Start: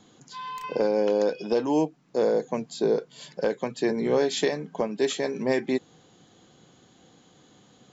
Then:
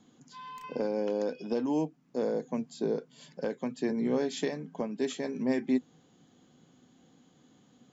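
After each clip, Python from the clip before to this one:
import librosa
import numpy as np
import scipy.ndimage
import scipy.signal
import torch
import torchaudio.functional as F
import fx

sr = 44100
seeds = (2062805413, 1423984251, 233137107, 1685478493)

y = fx.graphic_eq_31(x, sr, hz=(160, 250, 4000), db=(5, 11, -3))
y = F.gain(torch.from_numpy(y), -8.5).numpy()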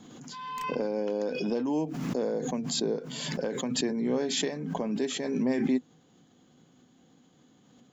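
y = fx.pre_swell(x, sr, db_per_s=29.0)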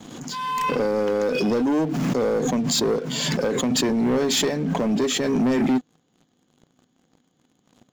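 y = fx.leveller(x, sr, passes=3)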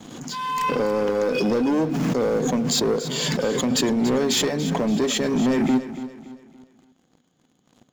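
y = fx.echo_feedback(x, sr, ms=285, feedback_pct=39, wet_db=-13.0)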